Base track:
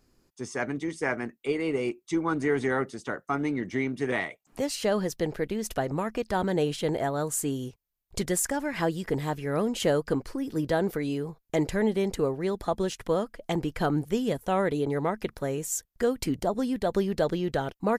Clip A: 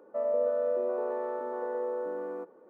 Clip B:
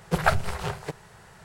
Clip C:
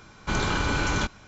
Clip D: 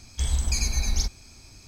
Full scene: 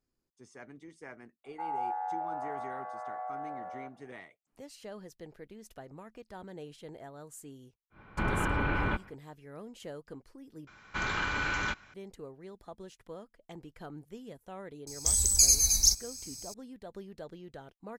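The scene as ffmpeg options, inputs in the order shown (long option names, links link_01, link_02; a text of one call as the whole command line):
ffmpeg -i bed.wav -i cue0.wav -i cue1.wav -i cue2.wav -i cue3.wav -filter_complex "[3:a]asplit=2[link_01][link_02];[0:a]volume=-19dB[link_03];[1:a]afreqshift=250[link_04];[link_01]lowpass=frequency=2500:width=0.5412,lowpass=frequency=2500:width=1.3066[link_05];[link_02]equalizer=frequency=1800:width=0.78:gain=12[link_06];[4:a]aexciter=amount=11.4:drive=5.3:freq=4600[link_07];[link_03]asplit=2[link_08][link_09];[link_08]atrim=end=10.674[link_10];[link_06]atrim=end=1.27,asetpts=PTS-STARTPTS,volume=-12.5dB[link_11];[link_09]atrim=start=11.936[link_12];[link_04]atrim=end=2.69,asetpts=PTS-STARTPTS,volume=-6.5dB,afade=type=in:duration=0.004:curve=hsin,afade=type=out:start_time=2.686:duration=0.004:curve=hsin,adelay=1440[link_13];[link_05]atrim=end=1.27,asetpts=PTS-STARTPTS,volume=-4dB,afade=type=in:duration=0.1,afade=type=out:start_time=1.17:duration=0.1,adelay=7900[link_14];[link_07]atrim=end=1.67,asetpts=PTS-STARTPTS,volume=-11dB,afade=type=in:duration=0.004:curve=hsin,afade=type=out:start_time=1.666:duration=0.004:curve=hsin,adelay=14870[link_15];[link_10][link_11]acrossfade=duration=0.004:curve1=hsin:curve2=hsin[link_16];[link_16][link_12]acrossfade=duration=0.004:curve1=hsin:curve2=hsin[link_17];[link_17][link_13][link_14][link_15]amix=inputs=4:normalize=0" out.wav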